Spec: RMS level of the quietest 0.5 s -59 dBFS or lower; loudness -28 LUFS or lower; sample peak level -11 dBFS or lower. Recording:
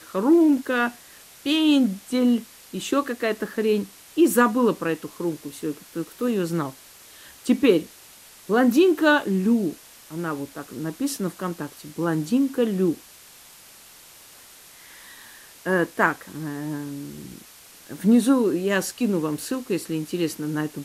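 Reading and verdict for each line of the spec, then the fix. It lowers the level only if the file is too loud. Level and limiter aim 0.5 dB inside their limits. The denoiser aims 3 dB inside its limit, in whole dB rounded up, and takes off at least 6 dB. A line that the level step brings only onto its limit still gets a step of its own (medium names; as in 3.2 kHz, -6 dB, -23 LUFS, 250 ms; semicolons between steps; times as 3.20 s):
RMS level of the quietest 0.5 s -48 dBFS: fail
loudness -23.0 LUFS: fail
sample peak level -5.0 dBFS: fail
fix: noise reduction 9 dB, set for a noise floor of -48 dBFS; trim -5.5 dB; peak limiter -11.5 dBFS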